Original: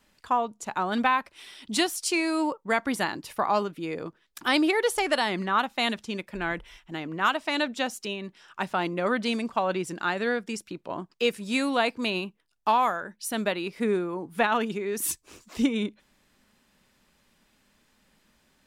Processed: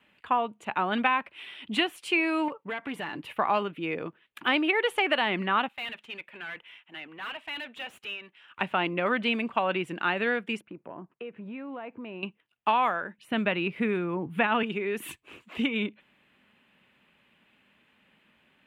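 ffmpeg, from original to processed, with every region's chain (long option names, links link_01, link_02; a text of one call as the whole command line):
ffmpeg -i in.wav -filter_complex "[0:a]asettb=1/sr,asplit=3[link_01][link_02][link_03];[link_01]atrim=end=2.484[link_04];[link_02]atrim=start=2.48:end=3.23,asetpts=PTS-STARTPTS,afade=type=in:duration=0.004:curve=qsin,afade=type=out:start_time=0.746:duration=0.004:curve=qsin,aecho=1:1:6.9:0.35,atrim=end_sample=33075,acompressor=threshold=-32dB:ratio=3:attack=3.2:release=140:knee=1:detection=peak,asoftclip=type=hard:threshold=-30dB[link_05];[link_03]atrim=start=3.226[link_06];[link_04][link_05]acrossfade=duration=0.004:curve1=hsin:curve2=qsin[link_07];[link_07][link_06]acrossfade=duration=0.004:curve1=qsin:curve2=hsin,asettb=1/sr,asplit=3[link_08][link_09][link_10];[link_08]atrim=end=5.684[link_11];[link_09]atrim=start=5.68:end=8.61,asetpts=PTS-STARTPTS,afade=type=in:duration=0.004:curve=qsin,afade=type=out:start_time=2.926:duration=0.004:curve=qsin,highpass=frequency=980:poles=1,aeval=exprs='(tanh(63.1*val(0)+0.55)-tanh(0.55))/63.1':channel_layout=same[link_12];[link_10]atrim=start=8.606[link_13];[link_11][link_12]acrossfade=duration=0.004:curve1=hsin:curve2=qsin[link_14];[link_14][link_13]acrossfade=duration=0.004:curve1=qsin:curve2=hsin,asettb=1/sr,asplit=3[link_15][link_16][link_17];[link_15]atrim=end=10.614[link_18];[link_16]atrim=start=10.61:end=12.23,asetpts=PTS-STARTPTS,afade=type=in:duration=0.004:curve=qsin,afade=type=out:start_time=1.616:duration=0.004:curve=qsin,lowpass=1200,acompressor=threshold=-37dB:ratio=6:attack=3.2:release=140:knee=1:detection=peak[link_19];[link_17]atrim=start=12.226[link_20];[link_18][link_19]acrossfade=duration=0.004:curve1=hsin:curve2=qsin[link_21];[link_21][link_20]acrossfade=duration=0.004:curve1=qsin:curve2=hsin,asettb=1/sr,asplit=3[link_22][link_23][link_24];[link_22]atrim=end=13.184[link_25];[link_23]atrim=start=13.18:end=14.63,asetpts=PTS-STARTPTS,afade=type=in:duration=0.004:curve=qsin,afade=type=out:start_time=1.446:duration=0.004:curve=qsin,equalizer=frequency=110:width_type=o:width=1.7:gain=13,acrossover=split=3000[link_26][link_27];[link_27]acompressor=threshold=-42dB:ratio=4:attack=1:release=60[link_28];[link_26][link_28]amix=inputs=2:normalize=0[link_29];[link_24]atrim=start=14.626[link_30];[link_25][link_29]acrossfade=duration=0.004:curve1=hsin:curve2=qsin[link_31];[link_31][link_30]acrossfade=duration=0.004:curve1=qsin:curve2=hsin,highpass=97,highshelf=frequency=3900:width_type=q:width=3:gain=-12,acrossover=split=840|3500[link_32][link_33][link_34];[link_32]acompressor=threshold=-26dB:ratio=4[link_35];[link_33]acompressor=threshold=-24dB:ratio=4[link_36];[link_34]acompressor=threshold=-40dB:ratio=4[link_37];[link_35][link_36][link_37]amix=inputs=3:normalize=0" out.wav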